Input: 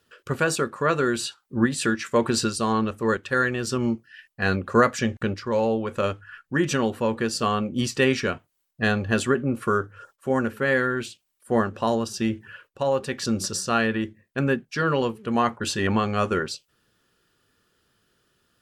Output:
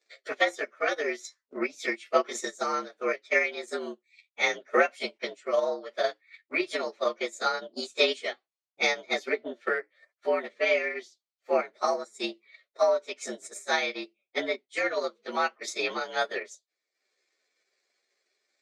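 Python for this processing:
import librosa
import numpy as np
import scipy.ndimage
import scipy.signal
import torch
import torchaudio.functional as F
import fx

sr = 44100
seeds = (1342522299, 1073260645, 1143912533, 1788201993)

y = fx.partial_stretch(x, sr, pct=114)
y = fx.transient(y, sr, attack_db=8, sustain_db=-9)
y = fx.cabinet(y, sr, low_hz=430.0, low_slope=24, high_hz=7300.0, hz=(480.0, 920.0, 1600.0), db=(-6, -7, -7))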